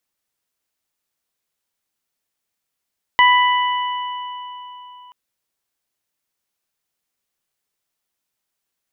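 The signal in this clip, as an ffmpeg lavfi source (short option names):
-f lavfi -i "aevalsrc='0.316*pow(10,-3*t/3.74)*sin(2*PI*990*t)+0.251*pow(10,-3*t/2.08)*sin(2*PI*1980*t)+0.126*pow(10,-3*t/3.45)*sin(2*PI*2970*t)':d=1.93:s=44100"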